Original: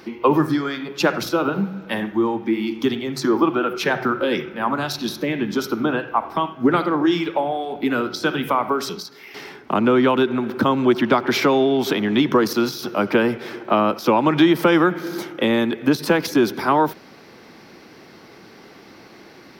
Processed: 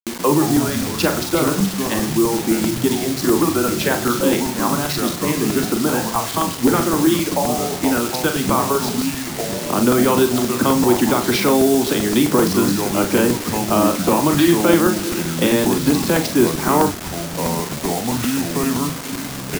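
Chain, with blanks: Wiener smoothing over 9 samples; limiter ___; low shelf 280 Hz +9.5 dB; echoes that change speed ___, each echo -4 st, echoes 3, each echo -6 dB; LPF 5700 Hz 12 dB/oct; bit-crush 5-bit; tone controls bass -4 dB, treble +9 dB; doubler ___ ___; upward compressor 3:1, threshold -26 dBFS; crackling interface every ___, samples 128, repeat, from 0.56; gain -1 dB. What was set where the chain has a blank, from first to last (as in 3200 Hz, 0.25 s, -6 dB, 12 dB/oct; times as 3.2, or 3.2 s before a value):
-8.5 dBFS, 0.108 s, 41 ms, -7.5 dB, 0.13 s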